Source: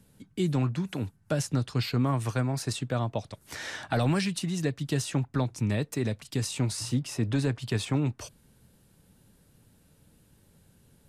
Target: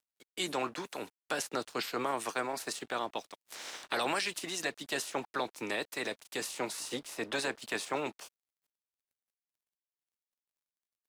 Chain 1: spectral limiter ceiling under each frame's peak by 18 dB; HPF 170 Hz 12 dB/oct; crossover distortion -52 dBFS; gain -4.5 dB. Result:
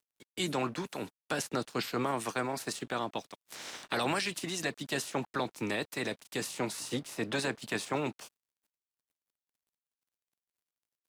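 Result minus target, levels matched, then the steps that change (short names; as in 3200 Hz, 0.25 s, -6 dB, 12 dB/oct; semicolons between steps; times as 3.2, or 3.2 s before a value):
125 Hz band +10.0 dB
change: HPF 350 Hz 12 dB/oct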